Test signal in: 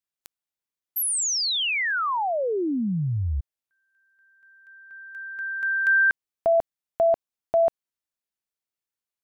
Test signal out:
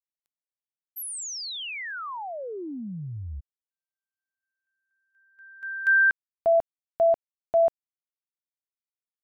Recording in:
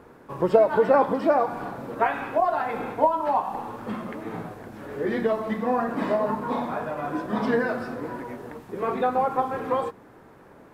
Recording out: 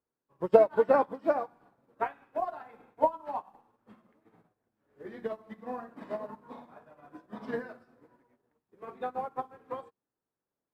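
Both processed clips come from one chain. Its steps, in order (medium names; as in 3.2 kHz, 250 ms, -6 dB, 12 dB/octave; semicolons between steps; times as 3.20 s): upward expansion 2.5:1, over -41 dBFS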